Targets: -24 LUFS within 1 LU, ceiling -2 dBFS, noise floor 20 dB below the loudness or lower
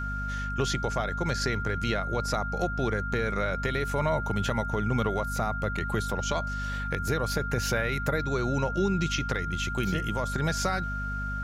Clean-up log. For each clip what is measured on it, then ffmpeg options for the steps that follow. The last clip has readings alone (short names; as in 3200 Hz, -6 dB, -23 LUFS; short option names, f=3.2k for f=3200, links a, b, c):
hum 50 Hz; harmonics up to 250 Hz; hum level -32 dBFS; steady tone 1400 Hz; tone level -33 dBFS; loudness -29.0 LUFS; peak -13.5 dBFS; loudness target -24.0 LUFS
-> -af "bandreject=f=50:t=h:w=4,bandreject=f=100:t=h:w=4,bandreject=f=150:t=h:w=4,bandreject=f=200:t=h:w=4,bandreject=f=250:t=h:w=4"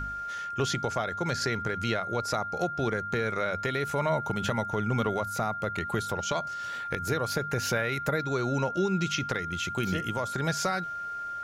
hum none; steady tone 1400 Hz; tone level -33 dBFS
-> -af "bandreject=f=1.4k:w=30"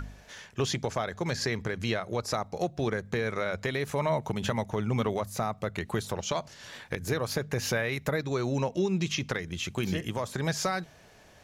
steady tone none; loudness -31.0 LUFS; peak -15.5 dBFS; loudness target -24.0 LUFS
-> -af "volume=7dB"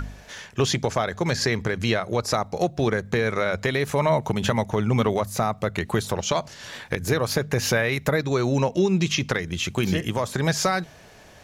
loudness -24.0 LUFS; peak -8.5 dBFS; noise floor -48 dBFS